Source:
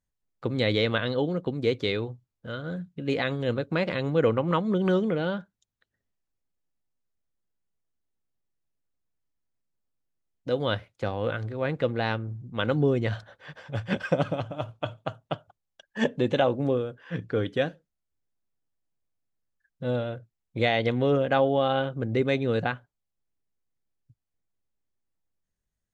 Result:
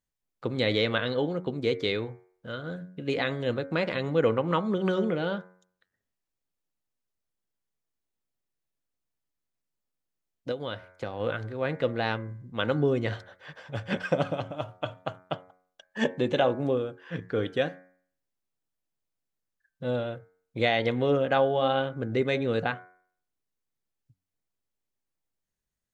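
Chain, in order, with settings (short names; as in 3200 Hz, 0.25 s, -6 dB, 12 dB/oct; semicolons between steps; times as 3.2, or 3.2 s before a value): low shelf 150 Hz -6 dB; de-hum 91.63 Hz, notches 26; 10.51–11.2 compressor 6:1, threshold -30 dBFS, peak gain reduction 8.5 dB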